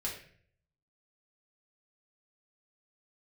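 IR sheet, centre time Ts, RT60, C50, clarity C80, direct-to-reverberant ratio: 31 ms, 0.55 s, 5.5 dB, 9.5 dB, -4.0 dB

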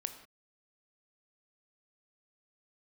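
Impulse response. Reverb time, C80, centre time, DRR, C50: not exponential, 12.0 dB, 12 ms, 7.5 dB, 10.0 dB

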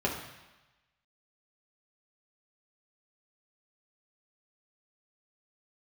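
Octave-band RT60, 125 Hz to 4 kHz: 1.1, 1.0, 1.0, 1.1, 1.2, 1.1 s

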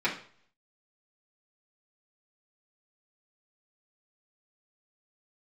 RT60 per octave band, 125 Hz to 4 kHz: 0.65, 0.50, 0.50, 0.50, 0.45, 0.45 s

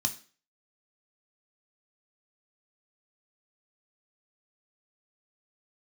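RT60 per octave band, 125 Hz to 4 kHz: 0.30, 0.40, 0.40, 0.40, 0.40, 0.40 s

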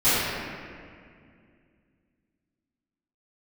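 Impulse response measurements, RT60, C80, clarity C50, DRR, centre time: 2.2 s, -2.0 dB, -4.5 dB, -19.5 dB, 0.158 s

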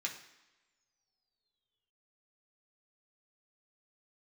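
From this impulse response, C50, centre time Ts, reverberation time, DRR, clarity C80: 8.5 dB, 21 ms, not exponential, -1.0 dB, 11.5 dB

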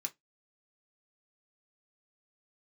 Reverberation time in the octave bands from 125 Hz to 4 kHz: 0.20, 0.20, 0.15, 0.15, 0.15, 0.15 s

